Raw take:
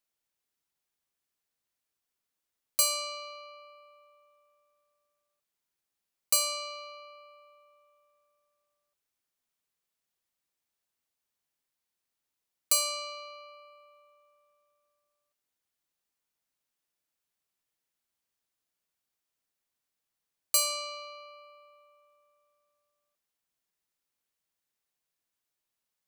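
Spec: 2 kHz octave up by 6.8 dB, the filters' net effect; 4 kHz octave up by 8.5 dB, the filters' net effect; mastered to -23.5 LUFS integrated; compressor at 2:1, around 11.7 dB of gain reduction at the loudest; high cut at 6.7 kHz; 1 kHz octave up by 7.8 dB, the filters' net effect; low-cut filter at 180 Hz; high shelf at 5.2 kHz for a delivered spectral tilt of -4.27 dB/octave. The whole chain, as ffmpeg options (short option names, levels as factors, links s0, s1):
-af "highpass=180,lowpass=6700,equalizer=f=1000:t=o:g=7.5,equalizer=f=2000:t=o:g=3.5,equalizer=f=4000:t=o:g=5.5,highshelf=f=5200:g=8.5,acompressor=threshold=0.0112:ratio=2,volume=4.47"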